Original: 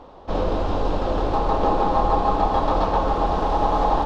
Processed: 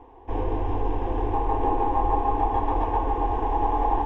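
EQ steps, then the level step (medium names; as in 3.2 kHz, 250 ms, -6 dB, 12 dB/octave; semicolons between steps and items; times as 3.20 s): low-pass 2 kHz 6 dB/octave; peaking EQ 98 Hz +7.5 dB 0.28 oct; static phaser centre 880 Hz, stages 8; -1.5 dB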